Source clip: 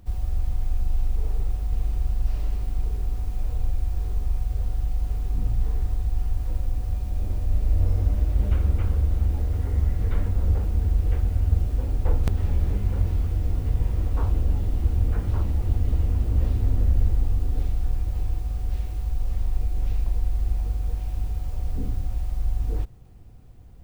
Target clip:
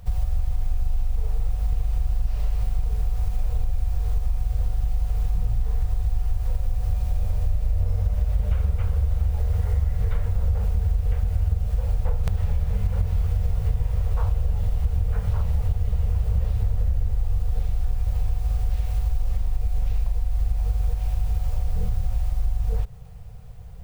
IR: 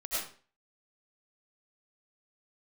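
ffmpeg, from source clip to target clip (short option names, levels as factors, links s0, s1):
-af "afftfilt=real='re*(1-between(b*sr/4096,200,410))':imag='im*(1-between(b*sr/4096,200,410))':win_size=4096:overlap=0.75,acompressor=threshold=0.0562:ratio=6,volume=2.24"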